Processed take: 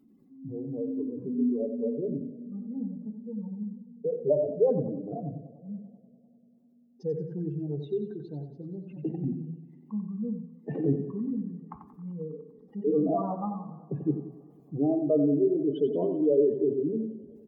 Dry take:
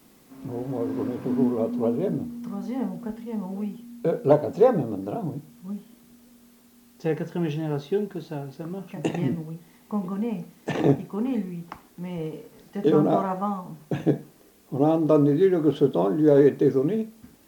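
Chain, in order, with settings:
expanding power law on the bin magnitudes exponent 2.5
hum removal 84.86 Hz, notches 18
on a send: repeating echo 90 ms, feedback 38%, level −9 dB
on the sum: feedback echo with a swinging delay time 98 ms, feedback 79%, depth 107 cents, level −22 dB
level −5 dB

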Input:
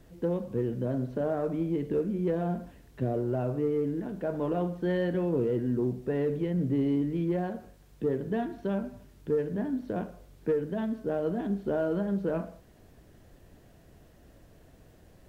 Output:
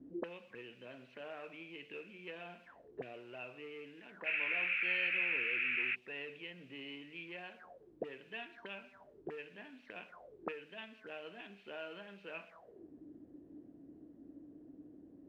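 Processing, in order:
0:04.25–0:05.94: noise in a band 1,300–2,500 Hz −40 dBFS
envelope filter 240–2,600 Hz, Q 10, up, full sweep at −30 dBFS
level +14.5 dB

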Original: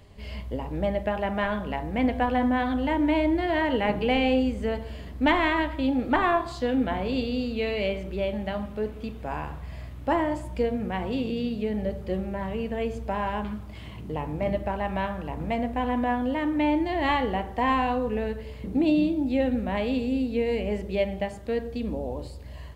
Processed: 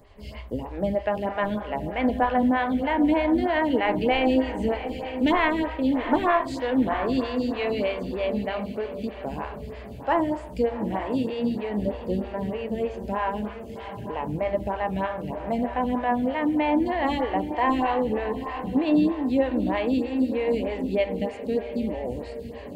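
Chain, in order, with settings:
on a send: feedback delay with all-pass diffusion 785 ms, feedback 40%, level −10 dB
on the sum: phaser with staggered stages 3.2 Hz
level +3.5 dB

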